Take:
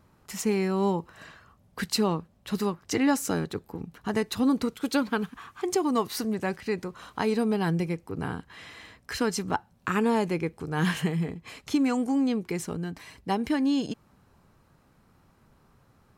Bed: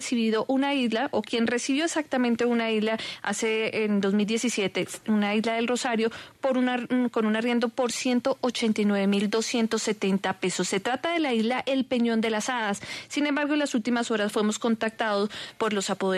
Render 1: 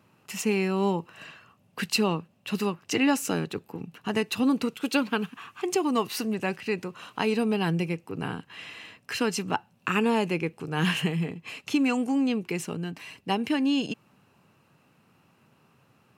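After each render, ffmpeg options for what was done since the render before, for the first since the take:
ffmpeg -i in.wav -af "highpass=frequency=110:width=0.5412,highpass=frequency=110:width=1.3066,equalizer=frequency=2700:width_type=o:width=0.26:gain=13.5" out.wav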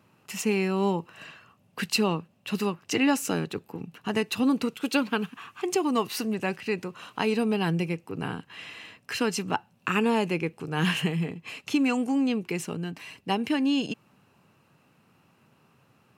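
ffmpeg -i in.wav -af anull out.wav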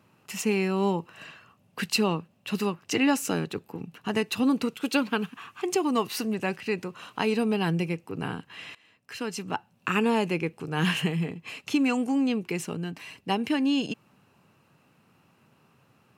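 ffmpeg -i in.wav -filter_complex "[0:a]asplit=2[link_01][link_02];[link_01]atrim=end=8.75,asetpts=PTS-STARTPTS,afade=type=out:start_time=8.746:duration=0.004:curve=hsin:silence=0.0944061[link_03];[link_02]atrim=start=8.75,asetpts=PTS-STARTPTS,afade=type=in:duration=1.17:silence=0.0944061[link_04];[link_03][link_04]concat=n=2:v=0:a=1" out.wav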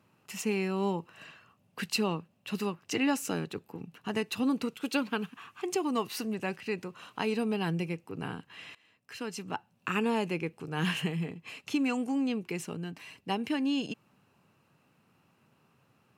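ffmpeg -i in.wav -af "volume=-5dB" out.wav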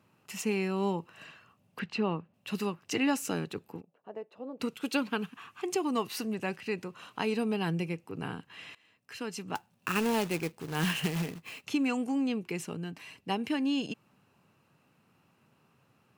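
ffmpeg -i in.wav -filter_complex "[0:a]asettb=1/sr,asplit=3[link_01][link_02][link_03];[link_01]atrim=end=1.794[link_04];[link_02]atrim=start=1.79:end=2.34,asetpts=PTS-STARTPTS,afade=type=in:duration=0.004:curve=qsin,afade=type=out:start_time=0.546:duration=0.004:curve=qsin,lowpass=2400[link_05];[link_03]atrim=start=2.336[link_06];[link_04][link_05]acrossfade=duration=0.004:curve1=hsin:curve2=qsin[link_07];[link_07][link_06]acrossfade=duration=0.004:curve1=qsin:curve2=hsin,asplit=3[link_08][link_09][link_10];[link_08]afade=type=out:start_time=3.8:duration=0.02[link_11];[link_09]bandpass=frequency=570:width_type=q:width=3.7,afade=type=in:start_time=3.8:duration=0.02,afade=type=out:start_time=4.59:duration=0.02[link_12];[link_10]afade=type=in:start_time=4.59:duration=0.02[link_13];[link_11][link_12][link_13]amix=inputs=3:normalize=0,asettb=1/sr,asplit=3[link_14][link_15][link_16];[link_14]atrim=end=9.554[link_17];[link_15]atrim=start=9.55:end=11.66,asetpts=PTS-STARTPTS,afade=type=in:duration=0.004:curve=qsin,afade=type=out:start_time=2.106:duration=0.004:curve=qsin,acrusher=bits=2:mode=log:mix=0:aa=0.000001[link_18];[link_16]atrim=start=11.656[link_19];[link_17][link_18]acrossfade=duration=0.004:curve1=hsin:curve2=qsin[link_20];[link_20][link_19]acrossfade=duration=0.004:curve1=qsin:curve2=hsin" out.wav

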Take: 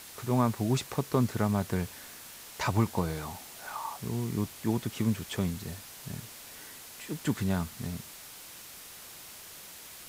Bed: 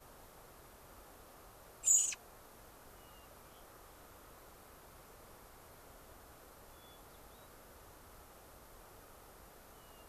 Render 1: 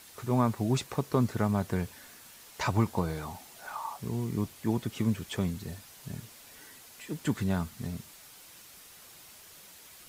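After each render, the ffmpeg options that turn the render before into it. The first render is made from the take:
ffmpeg -i in.wav -af "afftdn=noise_reduction=6:noise_floor=-48" out.wav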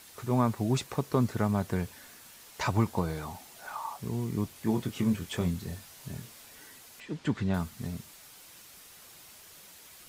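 ffmpeg -i in.wav -filter_complex "[0:a]asettb=1/sr,asplit=3[link_01][link_02][link_03];[link_01]atrim=end=4.534[link_04];[link_02]atrim=start=4.53:end=6.47,asetpts=PTS-STARTPTS,afade=type=in:duration=0.004:curve=qsin,afade=type=out:start_time=1.936:duration=0.004:curve=qsin,asplit=2[link_05][link_06];[link_06]adelay=23,volume=-6.5dB[link_07];[link_05][link_07]amix=inputs=2:normalize=0,atrim=end_sample=85554[link_08];[link_03]atrim=start=6.466[link_09];[link_04][link_08]acrossfade=duration=0.004:curve1=hsin:curve2=qsin[link_10];[link_10][link_09]acrossfade=duration=0.004:curve1=qsin:curve2=hsin,asettb=1/sr,asplit=3[link_11][link_12][link_13];[link_11]atrim=end=7.004[link_14];[link_12]atrim=start=7:end=7.54,asetpts=PTS-STARTPTS,afade=type=in:duration=0.004:curve=qsin,afade=type=out:start_time=0.536:duration=0.004:curve=qsin,lowpass=4700[link_15];[link_13]atrim=start=7.536[link_16];[link_14][link_15]acrossfade=duration=0.004:curve1=hsin:curve2=qsin[link_17];[link_17][link_16]acrossfade=duration=0.004:curve1=qsin:curve2=hsin" out.wav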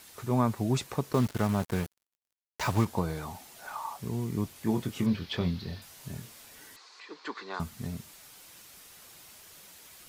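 ffmpeg -i in.wav -filter_complex "[0:a]asettb=1/sr,asplit=3[link_01][link_02][link_03];[link_01]atrim=end=1.134[link_04];[link_02]atrim=start=1.13:end=2.85,asetpts=PTS-STARTPTS,afade=type=in:duration=0.004:curve=qsin,afade=type=out:start_time=1.716:duration=0.004:curve=qsin,acrusher=bits=5:mix=0:aa=0.5[link_05];[link_03]atrim=start=2.846[link_06];[link_04][link_05]acrossfade=duration=0.004:curve1=hsin:curve2=qsin[link_07];[link_07][link_06]acrossfade=duration=0.004:curve1=qsin:curve2=hsin,asettb=1/sr,asplit=3[link_08][link_09][link_10];[link_08]atrim=end=5.064[link_11];[link_09]atrim=start=5.06:end=5.82,asetpts=PTS-STARTPTS,afade=type=in:duration=0.004:curve=qsin,afade=type=out:start_time=0.756:duration=0.004:curve=qsin,highshelf=frequency=5900:width_type=q:width=3:gain=-10.5[link_12];[link_10]atrim=start=5.816[link_13];[link_11][link_12]acrossfade=duration=0.004:curve1=hsin:curve2=qsin[link_14];[link_14][link_13]acrossfade=duration=0.004:curve1=qsin:curve2=hsin,asettb=1/sr,asplit=3[link_15][link_16][link_17];[link_15]atrim=end=6.764[link_18];[link_16]atrim=start=6.76:end=7.6,asetpts=PTS-STARTPTS,afade=type=in:duration=0.004:curve=qsin,afade=type=out:start_time=0.836:duration=0.004:curve=qsin,highpass=frequency=400:width=0.5412,highpass=frequency=400:width=1.3066,equalizer=frequency=610:width_type=q:width=4:gain=-9,equalizer=frequency=1100:width_type=q:width=4:gain=9,equalizer=frequency=3000:width_type=q:width=4:gain=-5,equalizer=frequency=4300:width_type=q:width=4:gain=8,lowpass=frequency=6100:width=0.5412,lowpass=frequency=6100:width=1.3066[link_19];[link_17]atrim=start=7.596[link_20];[link_18][link_19]acrossfade=duration=0.004:curve1=hsin:curve2=qsin[link_21];[link_21][link_20]acrossfade=duration=0.004:curve1=qsin:curve2=hsin" out.wav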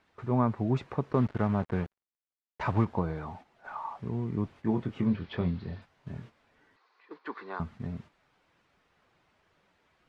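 ffmpeg -i in.wav -af "agate=range=-9dB:threshold=-46dB:ratio=16:detection=peak,lowpass=1900" out.wav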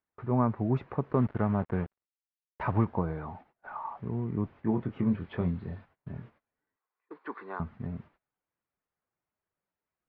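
ffmpeg -i in.wav -af "lowpass=2100,agate=range=-22dB:threshold=-58dB:ratio=16:detection=peak" out.wav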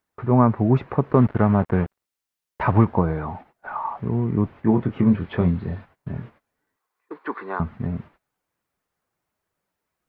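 ffmpeg -i in.wav -af "volume=10dB" out.wav

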